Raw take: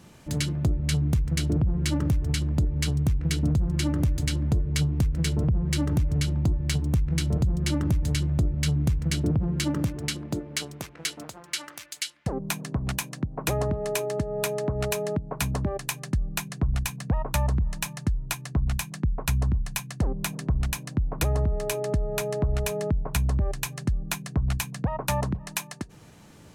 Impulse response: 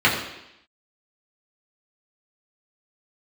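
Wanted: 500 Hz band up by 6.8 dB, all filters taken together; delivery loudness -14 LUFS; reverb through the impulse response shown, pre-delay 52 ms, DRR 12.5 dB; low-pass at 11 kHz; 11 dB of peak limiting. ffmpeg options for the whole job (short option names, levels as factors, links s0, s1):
-filter_complex "[0:a]lowpass=11000,equalizer=f=500:t=o:g=9,alimiter=limit=0.0841:level=0:latency=1,asplit=2[s0][s1];[1:a]atrim=start_sample=2205,adelay=52[s2];[s1][s2]afir=irnorm=-1:irlink=0,volume=0.0211[s3];[s0][s3]amix=inputs=2:normalize=0,volume=6.68"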